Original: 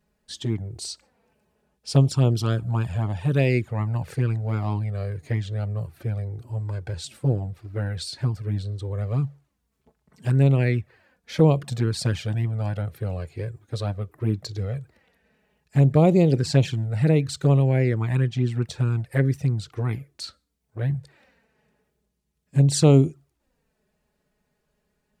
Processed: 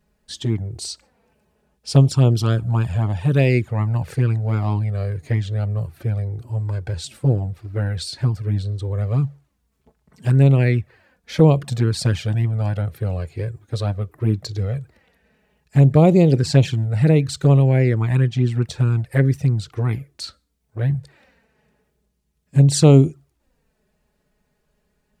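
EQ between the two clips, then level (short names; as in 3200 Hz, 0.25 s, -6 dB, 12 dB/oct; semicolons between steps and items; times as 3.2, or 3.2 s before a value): low shelf 69 Hz +6 dB; +3.5 dB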